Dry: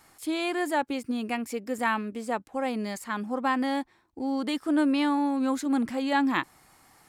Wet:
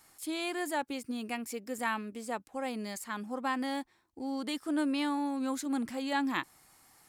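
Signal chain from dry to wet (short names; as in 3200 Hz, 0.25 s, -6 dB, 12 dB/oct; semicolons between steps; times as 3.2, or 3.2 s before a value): high shelf 3900 Hz +8 dB; gain -7 dB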